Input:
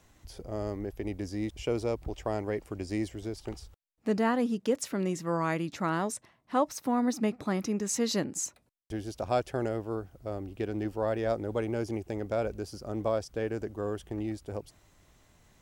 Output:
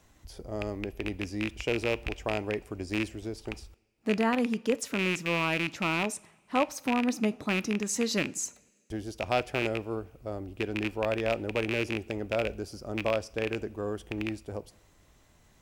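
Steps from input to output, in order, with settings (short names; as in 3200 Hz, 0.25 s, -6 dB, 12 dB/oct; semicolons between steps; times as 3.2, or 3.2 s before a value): rattling part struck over -36 dBFS, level -19 dBFS; two-slope reverb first 0.42 s, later 1.9 s, from -17 dB, DRR 17 dB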